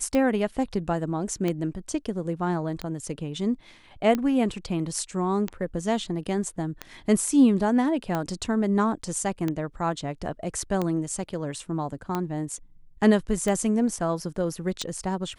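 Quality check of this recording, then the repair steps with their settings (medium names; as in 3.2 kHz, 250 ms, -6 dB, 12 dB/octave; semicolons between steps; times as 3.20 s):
tick 45 rpm -14 dBFS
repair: de-click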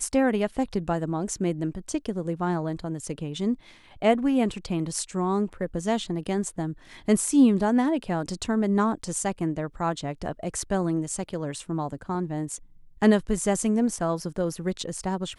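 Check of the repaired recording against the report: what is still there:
nothing left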